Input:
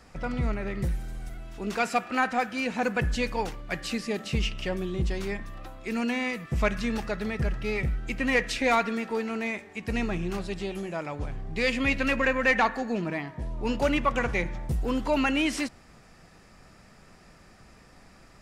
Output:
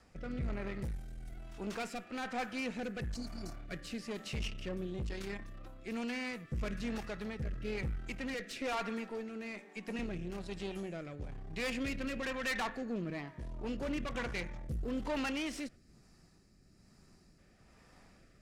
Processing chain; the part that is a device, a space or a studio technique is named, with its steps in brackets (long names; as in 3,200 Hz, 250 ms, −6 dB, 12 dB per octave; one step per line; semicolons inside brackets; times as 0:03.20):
0:03.18–0:03.63: healed spectral selection 390–4,000 Hz after
0:08.34–0:09.99: elliptic high-pass filter 180 Hz
overdriven rotary cabinet (tube saturation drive 27 dB, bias 0.55; rotating-speaker cabinet horn 1.1 Hz)
0:15.76–0:17.39: gain on a spectral selection 420–3,800 Hz −8 dB
level −4 dB